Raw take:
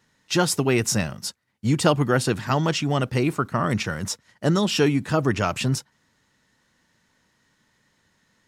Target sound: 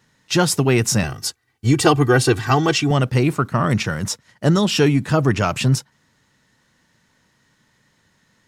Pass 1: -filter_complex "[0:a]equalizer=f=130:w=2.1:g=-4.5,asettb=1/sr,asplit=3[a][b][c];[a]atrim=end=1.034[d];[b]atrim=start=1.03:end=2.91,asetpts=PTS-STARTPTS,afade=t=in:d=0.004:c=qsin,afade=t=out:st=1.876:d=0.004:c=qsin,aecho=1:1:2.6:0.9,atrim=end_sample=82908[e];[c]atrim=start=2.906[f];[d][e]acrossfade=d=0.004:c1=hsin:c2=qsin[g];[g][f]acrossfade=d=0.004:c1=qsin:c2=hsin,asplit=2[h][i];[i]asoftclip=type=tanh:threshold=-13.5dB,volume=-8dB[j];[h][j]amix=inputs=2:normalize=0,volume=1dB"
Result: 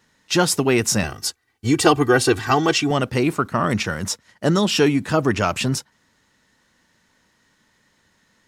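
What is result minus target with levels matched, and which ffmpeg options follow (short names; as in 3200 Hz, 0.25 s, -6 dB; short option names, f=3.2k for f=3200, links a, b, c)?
125 Hz band -5.0 dB
-filter_complex "[0:a]equalizer=f=130:w=2.1:g=4,asettb=1/sr,asplit=3[a][b][c];[a]atrim=end=1.034[d];[b]atrim=start=1.03:end=2.91,asetpts=PTS-STARTPTS,afade=t=in:d=0.004:c=qsin,afade=t=out:st=1.876:d=0.004:c=qsin,aecho=1:1:2.6:0.9,atrim=end_sample=82908[e];[c]atrim=start=2.906[f];[d][e]acrossfade=d=0.004:c1=hsin:c2=qsin[g];[g][f]acrossfade=d=0.004:c1=qsin:c2=hsin,asplit=2[h][i];[i]asoftclip=type=tanh:threshold=-13.5dB,volume=-8dB[j];[h][j]amix=inputs=2:normalize=0,volume=1dB"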